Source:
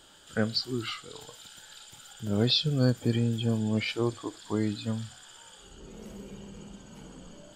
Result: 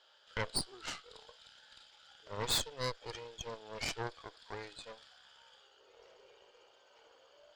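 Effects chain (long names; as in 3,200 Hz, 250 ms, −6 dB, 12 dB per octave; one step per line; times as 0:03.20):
elliptic band-pass filter 490–5,200 Hz, stop band 40 dB
harmonic generator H 8 −10 dB, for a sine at −13.5 dBFS
level −8 dB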